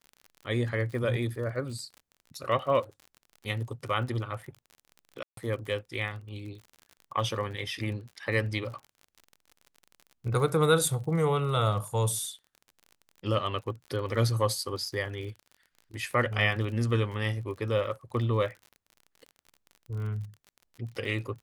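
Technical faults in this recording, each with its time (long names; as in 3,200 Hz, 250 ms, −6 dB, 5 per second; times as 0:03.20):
surface crackle 40 per second −39 dBFS
0:05.23–0:05.37: drop-out 143 ms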